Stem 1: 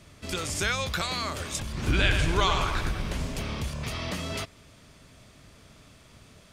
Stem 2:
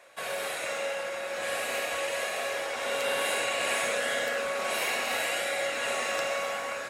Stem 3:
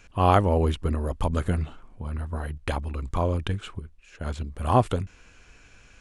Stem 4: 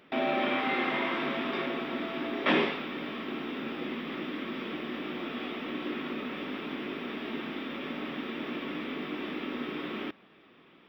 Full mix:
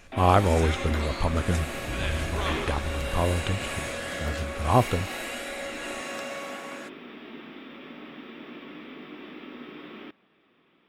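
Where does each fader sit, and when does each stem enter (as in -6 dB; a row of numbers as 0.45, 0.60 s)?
-9.5, -5.5, -0.5, -6.5 dB; 0.00, 0.00, 0.00, 0.00 s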